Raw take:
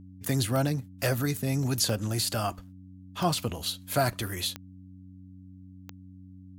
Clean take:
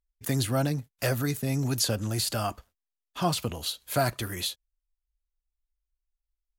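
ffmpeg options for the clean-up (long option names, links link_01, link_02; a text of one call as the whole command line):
ffmpeg -i in.wav -af "adeclick=threshold=4,bandreject=frequency=93:width_type=h:width=4,bandreject=frequency=186:width_type=h:width=4,bandreject=frequency=279:width_type=h:width=4" out.wav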